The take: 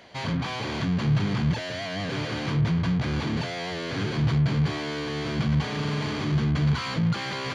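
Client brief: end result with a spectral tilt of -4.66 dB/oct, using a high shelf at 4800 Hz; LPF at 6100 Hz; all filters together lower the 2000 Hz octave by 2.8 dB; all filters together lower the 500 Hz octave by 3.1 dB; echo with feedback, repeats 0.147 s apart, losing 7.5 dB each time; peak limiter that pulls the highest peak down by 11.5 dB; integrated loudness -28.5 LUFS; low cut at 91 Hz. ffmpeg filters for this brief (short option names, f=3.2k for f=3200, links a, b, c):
-af "highpass=91,lowpass=6.1k,equalizer=f=500:t=o:g=-4,equalizer=f=2k:t=o:g=-4,highshelf=f=4.8k:g=4.5,alimiter=level_in=1.5dB:limit=-24dB:level=0:latency=1,volume=-1.5dB,aecho=1:1:147|294|441|588|735:0.422|0.177|0.0744|0.0312|0.0131,volume=4.5dB"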